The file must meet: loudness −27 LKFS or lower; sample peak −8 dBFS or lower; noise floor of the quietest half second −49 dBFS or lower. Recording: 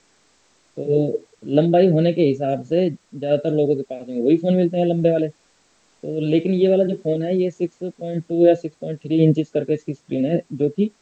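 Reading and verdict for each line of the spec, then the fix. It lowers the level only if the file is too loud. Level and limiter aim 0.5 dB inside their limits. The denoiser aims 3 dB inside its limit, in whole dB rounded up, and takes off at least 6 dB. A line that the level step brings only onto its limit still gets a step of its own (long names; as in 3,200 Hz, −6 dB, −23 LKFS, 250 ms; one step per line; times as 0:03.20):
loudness −20.0 LKFS: out of spec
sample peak −3.0 dBFS: out of spec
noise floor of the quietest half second −60 dBFS: in spec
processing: level −7.5 dB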